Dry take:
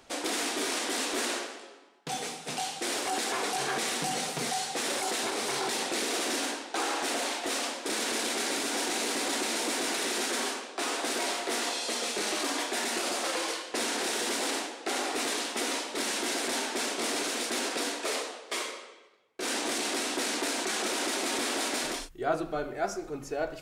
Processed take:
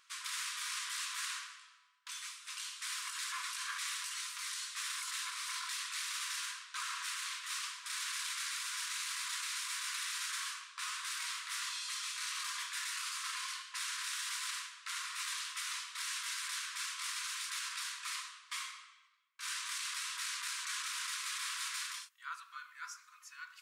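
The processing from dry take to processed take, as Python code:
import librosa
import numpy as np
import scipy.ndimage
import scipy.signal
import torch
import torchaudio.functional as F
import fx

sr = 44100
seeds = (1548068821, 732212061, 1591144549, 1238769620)

y = fx.brickwall_highpass(x, sr, low_hz=970.0)
y = y * librosa.db_to_amplitude(-7.0)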